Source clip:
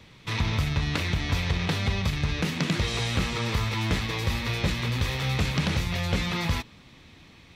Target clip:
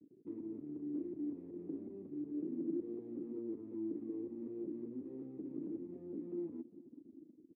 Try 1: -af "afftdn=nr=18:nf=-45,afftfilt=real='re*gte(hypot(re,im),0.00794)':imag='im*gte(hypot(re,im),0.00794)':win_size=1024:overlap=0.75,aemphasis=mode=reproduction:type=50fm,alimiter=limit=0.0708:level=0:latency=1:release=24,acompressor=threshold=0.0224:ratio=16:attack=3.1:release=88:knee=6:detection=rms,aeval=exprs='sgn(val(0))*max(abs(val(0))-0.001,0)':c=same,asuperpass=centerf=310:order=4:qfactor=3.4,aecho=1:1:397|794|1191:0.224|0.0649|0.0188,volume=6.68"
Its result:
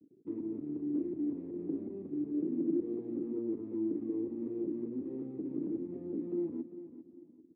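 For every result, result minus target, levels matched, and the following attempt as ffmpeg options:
compression: peak gain reduction -6 dB; echo-to-direct +8 dB
-af "afftdn=nr=18:nf=-45,afftfilt=real='re*gte(hypot(re,im),0.00794)':imag='im*gte(hypot(re,im),0.00794)':win_size=1024:overlap=0.75,aemphasis=mode=reproduction:type=50fm,alimiter=limit=0.0708:level=0:latency=1:release=24,acompressor=threshold=0.0106:ratio=16:attack=3.1:release=88:knee=6:detection=rms,aeval=exprs='sgn(val(0))*max(abs(val(0))-0.001,0)':c=same,asuperpass=centerf=310:order=4:qfactor=3.4,aecho=1:1:397|794|1191:0.224|0.0649|0.0188,volume=6.68"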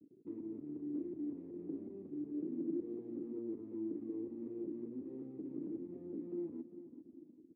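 echo-to-direct +8 dB
-af "afftdn=nr=18:nf=-45,afftfilt=real='re*gte(hypot(re,im),0.00794)':imag='im*gte(hypot(re,im),0.00794)':win_size=1024:overlap=0.75,aemphasis=mode=reproduction:type=50fm,alimiter=limit=0.0708:level=0:latency=1:release=24,acompressor=threshold=0.0106:ratio=16:attack=3.1:release=88:knee=6:detection=rms,aeval=exprs='sgn(val(0))*max(abs(val(0))-0.001,0)':c=same,asuperpass=centerf=310:order=4:qfactor=3.4,aecho=1:1:397|794:0.0891|0.0258,volume=6.68"

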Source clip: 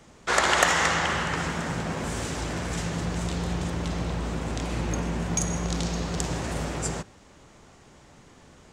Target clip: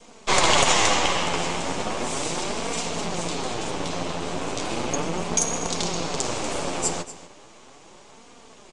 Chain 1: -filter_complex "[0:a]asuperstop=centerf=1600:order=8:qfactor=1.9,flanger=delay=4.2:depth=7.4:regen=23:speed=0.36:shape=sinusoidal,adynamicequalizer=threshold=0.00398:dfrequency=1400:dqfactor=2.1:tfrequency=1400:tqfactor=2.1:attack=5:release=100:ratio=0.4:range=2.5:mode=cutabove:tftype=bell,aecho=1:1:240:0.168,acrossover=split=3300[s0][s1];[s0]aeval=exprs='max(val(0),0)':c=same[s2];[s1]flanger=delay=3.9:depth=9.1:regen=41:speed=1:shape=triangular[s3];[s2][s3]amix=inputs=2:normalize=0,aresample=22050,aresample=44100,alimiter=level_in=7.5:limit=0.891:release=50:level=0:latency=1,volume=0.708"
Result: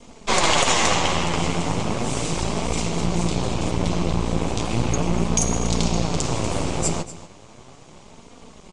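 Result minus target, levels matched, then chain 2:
250 Hz band +4.5 dB
-filter_complex "[0:a]asuperstop=centerf=1600:order=8:qfactor=1.9,flanger=delay=4.2:depth=7.4:regen=23:speed=0.36:shape=sinusoidal,adynamicequalizer=threshold=0.00398:dfrequency=1400:dqfactor=2.1:tfrequency=1400:tqfactor=2.1:attack=5:release=100:ratio=0.4:range=2.5:mode=cutabove:tftype=bell,highpass=300,aecho=1:1:240:0.168,acrossover=split=3300[s0][s1];[s0]aeval=exprs='max(val(0),0)':c=same[s2];[s1]flanger=delay=3.9:depth=9.1:regen=41:speed=1:shape=triangular[s3];[s2][s3]amix=inputs=2:normalize=0,aresample=22050,aresample=44100,alimiter=level_in=7.5:limit=0.891:release=50:level=0:latency=1,volume=0.708"

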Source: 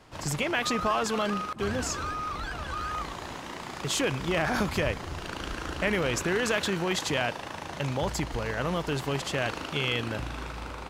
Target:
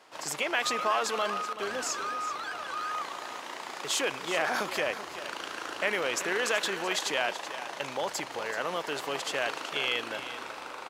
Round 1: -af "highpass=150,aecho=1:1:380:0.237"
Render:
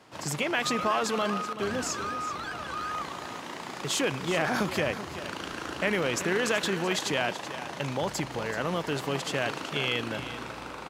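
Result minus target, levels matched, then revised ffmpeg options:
125 Hz band +15.0 dB
-af "highpass=460,aecho=1:1:380:0.237"

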